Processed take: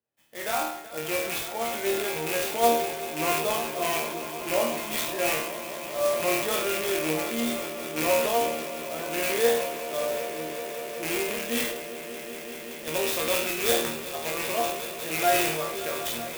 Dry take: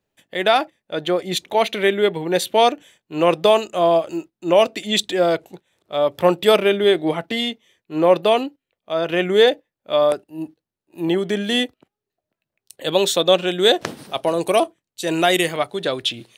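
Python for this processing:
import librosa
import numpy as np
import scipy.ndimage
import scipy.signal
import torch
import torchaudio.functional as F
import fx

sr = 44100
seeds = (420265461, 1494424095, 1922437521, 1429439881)

p1 = fx.rattle_buzz(x, sr, strikes_db=-26.0, level_db=-8.0)
p2 = scipy.signal.sosfilt(scipy.signal.butter(2, 56.0, 'highpass', fs=sr, output='sos'), p1)
p3 = fx.resonator_bank(p2, sr, root=39, chord='fifth', decay_s=0.49)
p4 = p3 + fx.echo_swell(p3, sr, ms=190, loudest=5, wet_db=-16.0, dry=0)
p5 = fx.transient(p4, sr, attack_db=-2, sustain_db=5)
p6 = fx.low_shelf(p5, sr, hz=330.0, db=-4.0)
p7 = fx.clock_jitter(p6, sr, seeds[0], jitter_ms=0.056)
y = p7 * librosa.db_to_amplitude(4.0)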